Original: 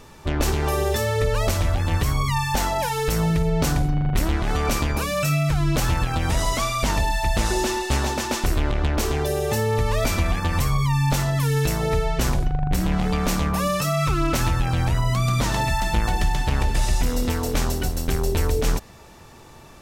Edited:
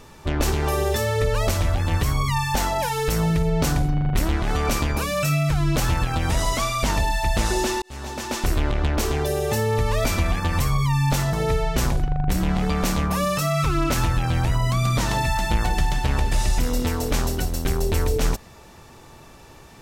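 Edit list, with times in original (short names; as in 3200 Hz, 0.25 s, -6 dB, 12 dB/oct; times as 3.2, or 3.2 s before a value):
7.82–8.49 fade in
11.33–11.76 cut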